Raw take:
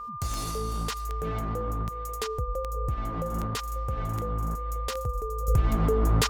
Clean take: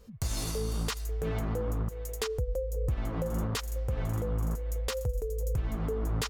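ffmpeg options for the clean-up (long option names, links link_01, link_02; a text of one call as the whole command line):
ffmpeg -i in.wav -af "adeclick=threshold=4,bandreject=frequency=1200:width=30,asetnsamples=nb_out_samples=441:pad=0,asendcmd='5.48 volume volume -8dB',volume=0dB" out.wav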